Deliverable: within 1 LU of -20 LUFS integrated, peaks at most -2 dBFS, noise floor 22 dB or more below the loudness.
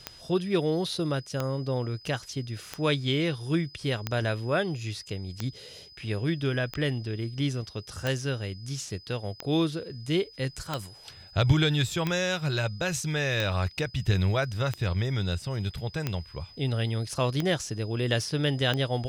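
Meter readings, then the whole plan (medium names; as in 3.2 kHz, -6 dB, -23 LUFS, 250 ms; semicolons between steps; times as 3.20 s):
clicks found 15; steady tone 5 kHz; tone level -49 dBFS; loudness -29.0 LUFS; peak level -9.5 dBFS; loudness target -20.0 LUFS
-> de-click; band-stop 5 kHz, Q 30; trim +9 dB; peak limiter -2 dBFS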